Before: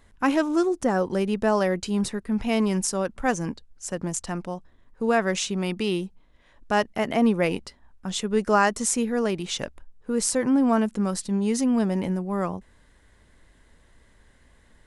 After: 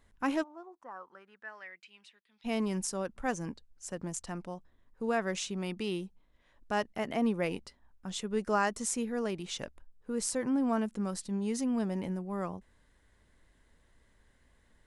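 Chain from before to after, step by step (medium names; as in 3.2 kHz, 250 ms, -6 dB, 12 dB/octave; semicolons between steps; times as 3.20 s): 0.42–2.44 s: band-pass filter 720 Hz -> 3.9 kHz, Q 5; trim -9 dB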